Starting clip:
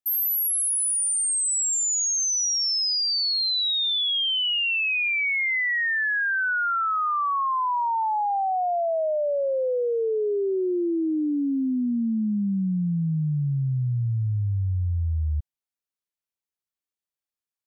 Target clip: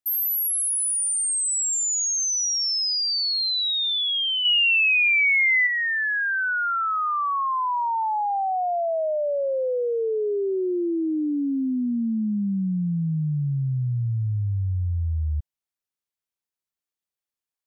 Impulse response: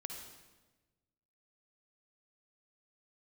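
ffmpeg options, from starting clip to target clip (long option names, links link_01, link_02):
-filter_complex "[0:a]asettb=1/sr,asplit=3[link_01][link_02][link_03];[link_01]atrim=end=4.454[link_04];[link_02]atrim=start=4.45:end=5.67,asetpts=PTS-STARTPTS,afade=type=in:duration=0.004:curve=qsin,afade=type=out:start_time=1.216:duration=0.004:curve=qsin,acontrast=29[link_05];[link_03]atrim=start=5.666[link_06];[link_04][link_05]acrossfade=duration=0.004:curve1=hsin:curve2=qsin[link_07];[link_07][link_06]acrossfade=duration=0.004:curve1=qsin:curve2=hsin"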